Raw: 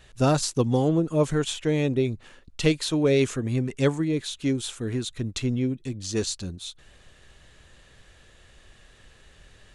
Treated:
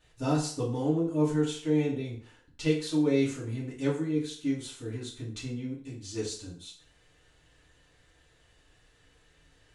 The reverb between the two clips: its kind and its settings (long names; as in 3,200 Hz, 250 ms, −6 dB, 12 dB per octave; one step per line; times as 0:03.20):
feedback delay network reverb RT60 0.51 s, low-frequency decay 0.8×, high-frequency decay 0.8×, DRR −7.5 dB
level −16 dB